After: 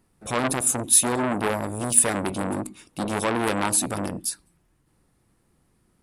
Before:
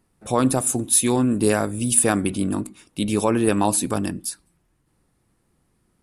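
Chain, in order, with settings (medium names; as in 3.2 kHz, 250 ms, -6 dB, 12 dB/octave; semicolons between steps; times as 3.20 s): time-frequency box 1.41–1.63 s, 660–11000 Hz -11 dB; transformer saturation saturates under 3.3 kHz; trim +1 dB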